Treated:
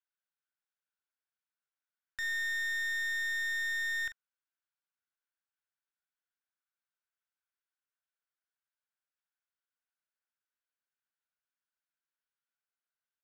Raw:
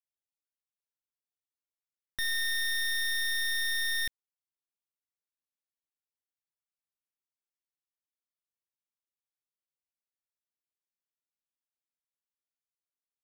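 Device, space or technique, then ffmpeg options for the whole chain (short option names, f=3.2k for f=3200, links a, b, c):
megaphone: -filter_complex "[0:a]highpass=700,lowpass=3.4k,equalizer=f=1.5k:t=o:w=0.31:g=12,asoftclip=type=hard:threshold=-34dB,asplit=2[a][b];[b]adelay=42,volume=-11dB[c];[a][c]amix=inputs=2:normalize=0"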